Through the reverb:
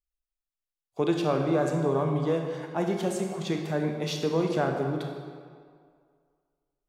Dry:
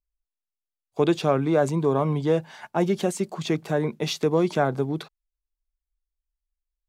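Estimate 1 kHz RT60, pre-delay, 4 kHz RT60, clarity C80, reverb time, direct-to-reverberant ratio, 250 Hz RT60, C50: 2.1 s, 23 ms, 1.4 s, 5.5 dB, 2.1 s, 2.5 dB, 1.9 s, 4.0 dB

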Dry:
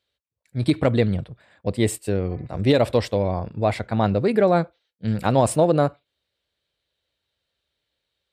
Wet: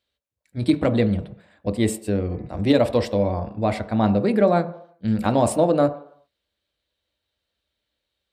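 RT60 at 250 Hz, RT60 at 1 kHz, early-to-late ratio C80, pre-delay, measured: 0.55 s, 0.70 s, 17.5 dB, 3 ms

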